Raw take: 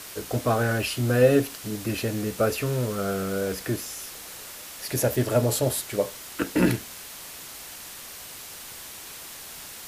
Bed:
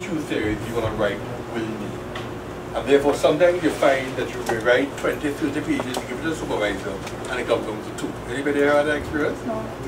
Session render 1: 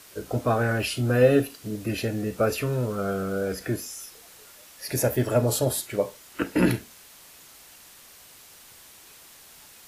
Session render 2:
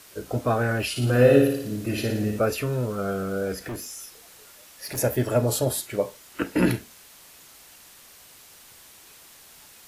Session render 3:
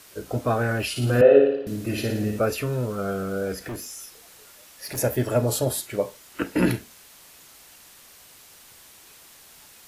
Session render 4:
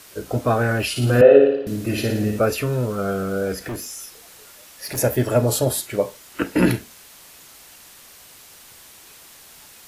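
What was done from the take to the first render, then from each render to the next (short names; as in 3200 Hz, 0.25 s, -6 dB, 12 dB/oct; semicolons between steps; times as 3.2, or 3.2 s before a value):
noise print and reduce 9 dB
0.9–2.39 flutter echo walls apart 9.8 m, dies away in 0.73 s; 3.61–4.98 hard clip -30 dBFS
1.21–1.67 speaker cabinet 360–2900 Hz, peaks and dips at 420 Hz +6 dB, 620 Hz +6 dB, 1100 Hz -4 dB, 2100 Hz -7 dB
gain +4 dB; limiter -1 dBFS, peak gain reduction 1.5 dB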